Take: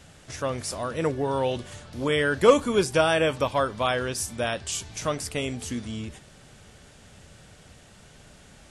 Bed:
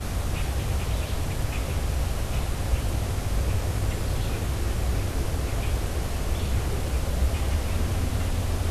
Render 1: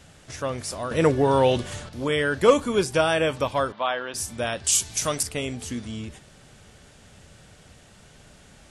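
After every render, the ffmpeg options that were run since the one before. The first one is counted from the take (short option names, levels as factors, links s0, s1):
-filter_complex "[0:a]asettb=1/sr,asplit=3[s0][s1][s2];[s0]atrim=end=0.914[s3];[s1]atrim=start=0.91:end=1.89,asetpts=PTS-STARTPTS,afade=t=in:d=0.004:c=qsin,afade=t=out:st=0.976:d=0.004:c=qsin,acontrast=76[s4];[s2]atrim=start=1.886[s5];[s3][s4]acrossfade=d=0.004:c1=hsin:c2=qsin[s6];[s6][s5]acrossfade=d=0.004:c1=qsin:c2=hsin,asettb=1/sr,asplit=3[s7][s8][s9];[s7]atrim=end=3.724[s10];[s8]atrim=start=3.72:end=4.14,asetpts=PTS-STARTPTS,afade=t=in:d=0.004:c=qsin,afade=t=out:st=0.416:d=0.004:c=qsin,highpass=360,equalizer=f=430:t=q:w=4:g=-8,equalizer=f=890:t=q:w=4:g=3,equalizer=f=2300:t=q:w=4:g=-4,lowpass=f=3700:w=0.5412,lowpass=f=3700:w=1.3066[s11];[s9]atrim=start=4.136[s12];[s10][s11]acrossfade=d=0.004:c1=hsin:c2=qsin[s13];[s13][s12]acrossfade=d=0.004:c1=qsin:c2=hsin,asettb=1/sr,asplit=3[s14][s15][s16];[s14]atrim=end=4.644[s17];[s15]atrim=start=4.64:end=5.23,asetpts=PTS-STARTPTS,afade=t=in:d=0.004:c=qsin,afade=t=out:st=0.586:d=0.004:c=qsin,aemphasis=mode=production:type=75kf[s18];[s16]atrim=start=5.226[s19];[s17][s18]acrossfade=d=0.004:c1=hsin:c2=qsin[s20];[s20][s19]acrossfade=d=0.004:c1=qsin:c2=hsin"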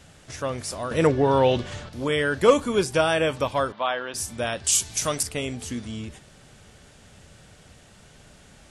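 -filter_complex "[0:a]asettb=1/sr,asplit=3[s0][s1][s2];[s0]atrim=end=1.074[s3];[s1]atrim=start=1.07:end=1.89,asetpts=PTS-STARTPTS,afade=t=in:d=0.004:c=qsin,afade=t=out:st=0.816:d=0.004:c=qsin,lowpass=5500[s4];[s2]atrim=start=1.886[s5];[s3][s4]acrossfade=d=0.004:c1=hsin:c2=qsin[s6];[s6][s5]acrossfade=d=0.004:c1=qsin:c2=hsin"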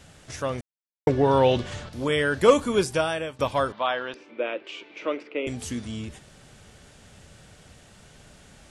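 -filter_complex "[0:a]asettb=1/sr,asplit=3[s0][s1][s2];[s0]atrim=end=4.144[s3];[s1]atrim=start=4.14:end=5.47,asetpts=PTS-STARTPTS,afade=t=in:d=0.004:c=qsin,afade=t=out:st=1.326:d=0.004:c=qsin,highpass=f=310:w=0.5412,highpass=f=310:w=1.3066,equalizer=f=320:t=q:w=4:g=9,equalizer=f=510:t=q:w=4:g=5,equalizer=f=740:t=q:w=4:g=-9,equalizer=f=1100:t=q:w=4:g=-4,equalizer=f=1700:t=q:w=4:g=-8,equalizer=f=2400:t=q:w=4:g=5,lowpass=f=2500:w=0.5412,lowpass=f=2500:w=1.3066[s4];[s2]atrim=start=5.466[s5];[s3][s4]acrossfade=d=0.004:c1=hsin:c2=qsin[s6];[s6][s5]acrossfade=d=0.004:c1=qsin:c2=hsin,asplit=4[s7][s8][s9][s10];[s7]atrim=end=0.61,asetpts=PTS-STARTPTS,afade=t=out:st=0.606:d=0.004:c=hsin[s11];[s8]atrim=start=0.61:end=1.07,asetpts=PTS-STARTPTS,volume=0[s12];[s9]atrim=start=1.07:end=3.39,asetpts=PTS-STARTPTS,afade=t=in:d=0.004:c=hsin,afade=t=out:st=1.72:d=0.6:silence=0.149624[s13];[s10]atrim=start=3.39,asetpts=PTS-STARTPTS,afade=t=in:d=0.004:c=hsin:silence=0.149624[s14];[s11][s12][s13][s14]concat=n=4:v=0:a=1"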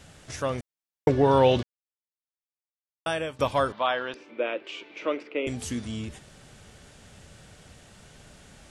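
-filter_complex "[0:a]asplit=3[s0][s1][s2];[s0]atrim=end=1.63,asetpts=PTS-STARTPTS,afade=t=out:st=1.626:d=0.004:c=hsin[s3];[s1]atrim=start=1.63:end=3.06,asetpts=PTS-STARTPTS,volume=0[s4];[s2]atrim=start=3.06,asetpts=PTS-STARTPTS,afade=t=in:d=0.004:c=hsin[s5];[s3][s4][s5]concat=n=3:v=0:a=1"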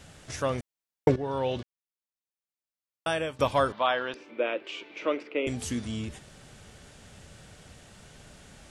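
-filter_complex "[0:a]asplit=2[s0][s1];[s0]atrim=end=1.16,asetpts=PTS-STARTPTS,afade=t=out:st=1.156:d=0.004:c=hsin:silence=0.199526[s2];[s1]atrim=start=1.16,asetpts=PTS-STARTPTS,afade=t=in:d=1.97:silence=0.199526[s3];[s2][s3]concat=n=2:v=0:a=1"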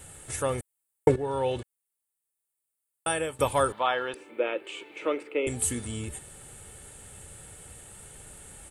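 -af "highshelf=f=7000:t=q:w=3:g=9,aecho=1:1:2.3:0.38"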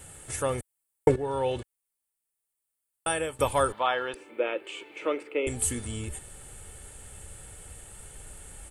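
-af "bandreject=f=3800:w=27,asubboost=boost=2.5:cutoff=75"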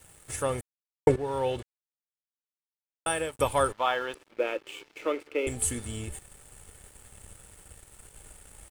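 -af "aeval=exprs='sgn(val(0))*max(abs(val(0))-0.00398,0)':c=same"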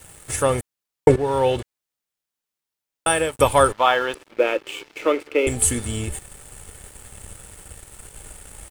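-af "volume=2.99,alimiter=limit=0.891:level=0:latency=1"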